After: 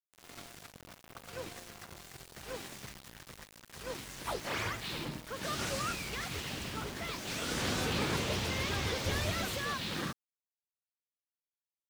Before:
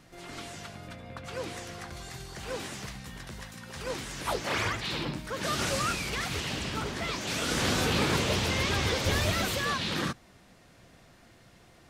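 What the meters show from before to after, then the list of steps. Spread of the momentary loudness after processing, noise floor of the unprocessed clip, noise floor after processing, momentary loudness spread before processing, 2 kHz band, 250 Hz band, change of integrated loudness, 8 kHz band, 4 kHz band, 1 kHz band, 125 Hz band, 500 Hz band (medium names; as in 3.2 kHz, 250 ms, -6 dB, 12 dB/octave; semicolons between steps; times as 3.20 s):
18 LU, -57 dBFS, under -85 dBFS, 16 LU, -6.0 dB, -6.0 dB, -5.5 dB, -5.5 dB, -6.0 dB, -6.0 dB, -6.5 dB, -6.0 dB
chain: added noise pink -53 dBFS; small samples zeroed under -37.5 dBFS; trim -6 dB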